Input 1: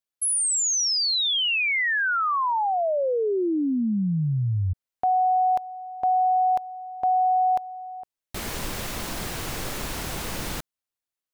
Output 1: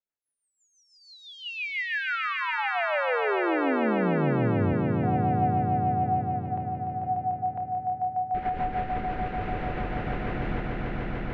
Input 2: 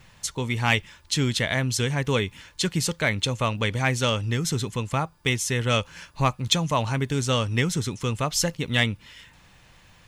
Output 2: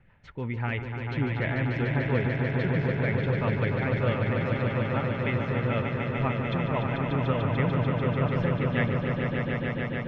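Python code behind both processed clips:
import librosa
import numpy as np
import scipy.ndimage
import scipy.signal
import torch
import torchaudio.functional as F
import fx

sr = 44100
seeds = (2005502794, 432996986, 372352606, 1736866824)

p1 = scipy.signal.sosfilt(scipy.signal.butter(4, 2200.0, 'lowpass', fs=sr, output='sos'), x)
p2 = fx.notch(p1, sr, hz=1100.0, q=9.4)
p3 = fx.level_steps(p2, sr, step_db=17)
p4 = p2 + (p3 * 10.0 ** (1.0 / 20.0))
p5 = fx.rotary(p4, sr, hz=6.0)
p6 = p5 + fx.echo_swell(p5, sr, ms=147, loudest=5, wet_db=-6, dry=0)
y = p6 * 10.0 ** (-6.0 / 20.0)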